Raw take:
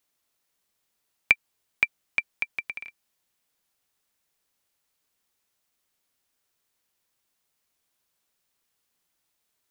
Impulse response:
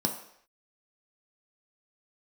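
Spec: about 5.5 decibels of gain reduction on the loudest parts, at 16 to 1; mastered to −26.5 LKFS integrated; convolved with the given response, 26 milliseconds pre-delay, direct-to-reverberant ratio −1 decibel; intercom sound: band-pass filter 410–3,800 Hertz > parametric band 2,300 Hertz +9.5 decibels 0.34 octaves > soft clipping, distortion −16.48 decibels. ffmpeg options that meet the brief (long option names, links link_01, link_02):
-filter_complex "[0:a]acompressor=threshold=-21dB:ratio=16,asplit=2[link_01][link_02];[1:a]atrim=start_sample=2205,adelay=26[link_03];[link_02][link_03]afir=irnorm=-1:irlink=0,volume=-6dB[link_04];[link_01][link_04]amix=inputs=2:normalize=0,highpass=410,lowpass=3800,equalizer=frequency=2300:width_type=o:width=0.34:gain=9.5,asoftclip=threshold=-7dB,volume=-2dB"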